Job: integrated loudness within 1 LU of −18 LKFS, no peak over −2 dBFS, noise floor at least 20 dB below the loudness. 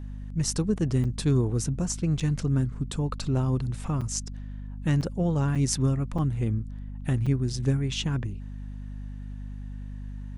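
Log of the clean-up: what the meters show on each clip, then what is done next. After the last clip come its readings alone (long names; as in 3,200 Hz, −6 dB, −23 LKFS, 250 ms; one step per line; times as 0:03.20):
number of dropouts 7; longest dropout 5.6 ms; mains hum 50 Hz; hum harmonics up to 250 Hz; level of the hum −34 dBFS; integrated loudness −27.5 LKFS; sample peak −7.5 dBFS; target loudness −18.0 LKFS
→ repair the gap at 0:01.04/0:02.20/0:04.01/0:05.01/0:05.55/0:06.18/0:07.26, 5.6 ms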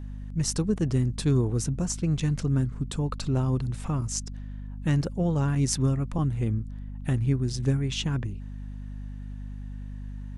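number of dropouts 0; mains hum 50 Hz; hum harmonics up to 250 Hz; level of the hum −34 dBFS
→ mains-hum notches 50/100/150/200/250 Hz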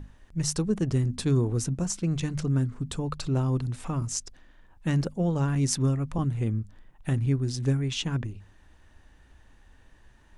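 mains hum none found; integrated loudness −28.0 LKFS; sample peak −7.5 dBFS; target loudness −18.0 LKFS
→ level +10 dB
brickwall limiter −2 dBFS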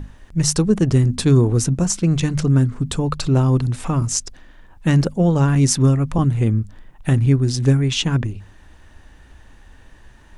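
integrated loudness −18.0 LKFS; sample peak −2.0 dBFS; background noise floor −47 dBFS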